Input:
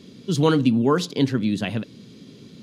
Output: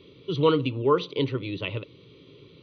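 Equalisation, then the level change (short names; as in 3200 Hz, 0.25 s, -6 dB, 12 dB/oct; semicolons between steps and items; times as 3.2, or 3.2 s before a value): brick-wall FIR low-pass 6100 Hz; fixed phaser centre 1100 Hz, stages 8; 0.0 dB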